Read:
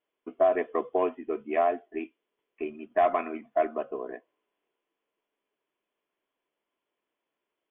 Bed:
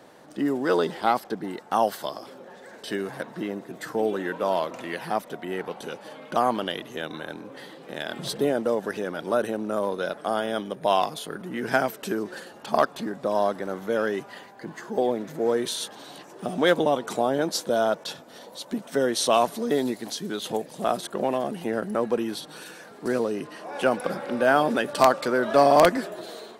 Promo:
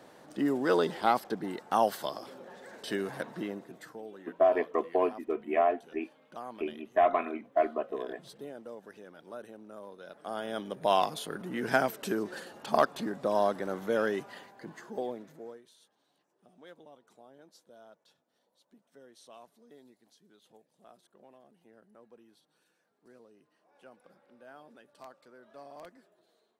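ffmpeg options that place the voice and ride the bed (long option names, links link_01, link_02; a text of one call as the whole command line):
ffmpeg -i stem1.wav -i stem2.wav -filter_complex "[0:a]adelay=4000,volume=-1dB[link_01];[1:a]volume=13dB,afade=type=out:start_time=3.27:duration=0.74:silence=0.149624,afade=type=in:start_time=10.05:duration=0.91:silence=0.149624,afade=type=out:start_time=14.05:duration=1.57:silence=0.0375837[link_02];[link_01][link_02]amix=inputs=2:normalize=0" out.wav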